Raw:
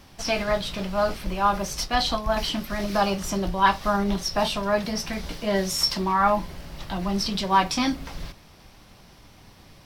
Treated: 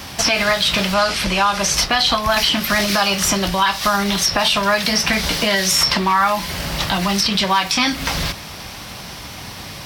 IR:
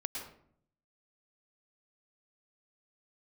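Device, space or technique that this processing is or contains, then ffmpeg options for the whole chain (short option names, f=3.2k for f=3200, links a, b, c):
mastering chain: -filter_complex "[0:a]asettb=1/sr,asplit=3[a][b][c];[a]atrim=end=0.944[d];[b]atrim=start=0.94:end=1.74,asetpts=PTS-STARTPTS,afade=t=in:d=0.004:c=qsin,afade=t=out:st=0.796:d=0.004:c=qsin,lowpass=9.1k[e];[c]atrim=start=1.736[f];[d][e]acrossfade=d=0.004:c1=hsin:c2=qsin[g];[g][f]acrossfade=d=0.004:c1=qsin:c2=hsin,highpass=56,equalizer=f=350:t=o:w=0.77:g=-2.5,acrossover=split=1400|3100[h][i][j];[h]acompressor=threshold=-34dB:ratio=4[k];[i]acompressor=threshold=-35dB:ratio=4[l];[j]acompressor=threshold=-39dB:ratio=4[m];[k][l][m]amix=inputs=3:normalize=0,acompressor=threshold=-34dB:ratio=2,tiltshelf=f=970:g=-3,asoftclip=type=hard:threshold=-21dB,alimiter=level_in=24dB:limit=-1dB:release=50:level=0:latency=1,volume=-5dB"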